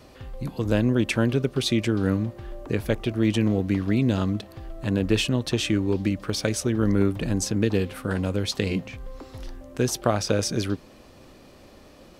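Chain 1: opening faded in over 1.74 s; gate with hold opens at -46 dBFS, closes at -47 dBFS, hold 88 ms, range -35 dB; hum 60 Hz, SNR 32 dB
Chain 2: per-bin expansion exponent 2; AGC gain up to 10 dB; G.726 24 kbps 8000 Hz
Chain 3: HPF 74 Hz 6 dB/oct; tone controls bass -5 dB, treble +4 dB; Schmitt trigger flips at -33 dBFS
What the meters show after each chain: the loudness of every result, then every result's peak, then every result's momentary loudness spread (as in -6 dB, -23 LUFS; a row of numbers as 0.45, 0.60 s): -25.5, -20.5, -29.0 LUFS; -5.5, -2.0, -21.5 dBFS; 11, 15, 8 LU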